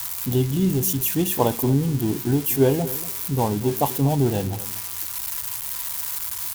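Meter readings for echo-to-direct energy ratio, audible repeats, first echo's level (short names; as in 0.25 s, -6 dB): -16.0 dB, 2, -16.0 dB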